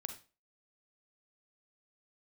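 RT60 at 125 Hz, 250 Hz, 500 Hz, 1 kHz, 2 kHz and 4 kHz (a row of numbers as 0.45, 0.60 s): 0.30, 0.35, 0.35, 0.30, 0.30, 0.30 s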